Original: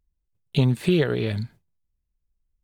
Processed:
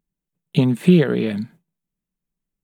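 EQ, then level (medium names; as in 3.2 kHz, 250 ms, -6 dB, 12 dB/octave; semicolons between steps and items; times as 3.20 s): resonant low shelf 120 Hz -13.5 dB, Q 3; peaking EQ 4.7 kHz -7.5 dB 0.57 oct; +2.5 dB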